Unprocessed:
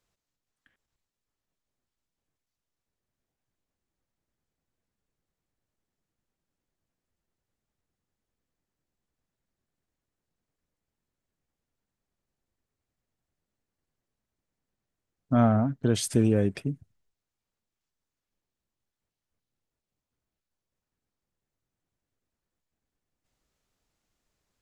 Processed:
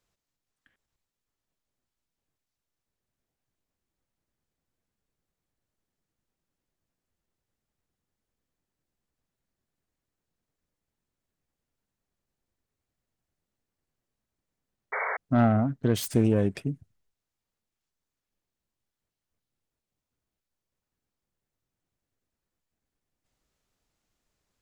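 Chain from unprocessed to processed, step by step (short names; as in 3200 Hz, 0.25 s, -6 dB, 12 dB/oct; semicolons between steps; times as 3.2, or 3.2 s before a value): self-modulated delay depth 0.17 ms; painted sound noise, 14.92–15.17, 400–2300 Hz -30 dBFS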